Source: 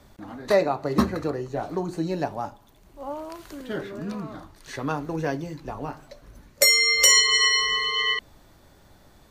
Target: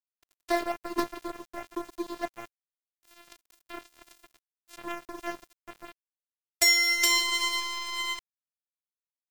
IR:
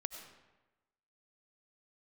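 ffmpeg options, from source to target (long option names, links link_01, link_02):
-af "acrusher=bits=6:mode=log:mix=0:aa=0.000001,afftfilt=real='hypot(re,im)*cos(PI*b)':imag='0':win_size=512:overlap=0.75,aeval=exprs='sgn(val(0))*max(abs(val(0))-0.0266,0)':channel_layout=same"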